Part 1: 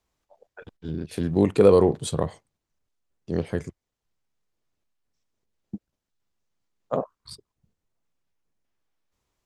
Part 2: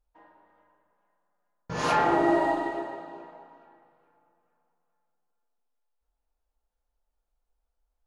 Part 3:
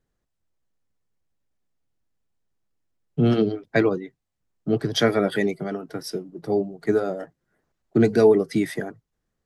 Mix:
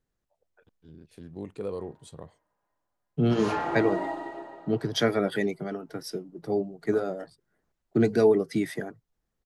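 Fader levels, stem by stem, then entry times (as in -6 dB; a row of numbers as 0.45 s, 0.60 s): -18.5 dB, -7.0 dB, -4.5 dB; 0.00 s, 1.60 s, 0.00 s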